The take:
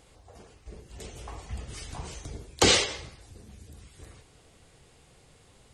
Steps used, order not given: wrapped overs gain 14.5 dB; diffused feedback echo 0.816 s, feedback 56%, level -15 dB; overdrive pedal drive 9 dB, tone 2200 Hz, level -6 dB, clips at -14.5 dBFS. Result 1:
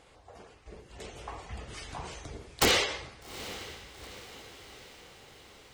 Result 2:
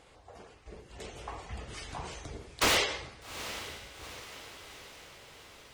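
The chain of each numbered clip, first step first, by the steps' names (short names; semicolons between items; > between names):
overdrive pedal > wrapped overs > diffused feedback echo; wrapped overs > diffused feedback echo > overdrive pedal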